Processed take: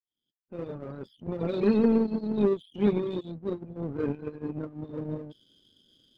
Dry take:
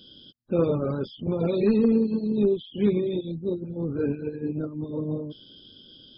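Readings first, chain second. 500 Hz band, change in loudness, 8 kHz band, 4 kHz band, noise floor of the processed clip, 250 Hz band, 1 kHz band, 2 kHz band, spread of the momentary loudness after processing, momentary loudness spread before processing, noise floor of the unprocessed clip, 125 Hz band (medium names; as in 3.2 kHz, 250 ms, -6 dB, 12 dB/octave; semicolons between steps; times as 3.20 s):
-3.5 dB, -3.0 dB, no reading, -7.0 dB, under -85 dBFS, -3.0 dB, +1.0 dB, -0.5 dB, 16 LU, 10 LU, -52 dBFS, -5.5 dB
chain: fade-in on the opening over 1.71 s; power-law waveshaper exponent 1.4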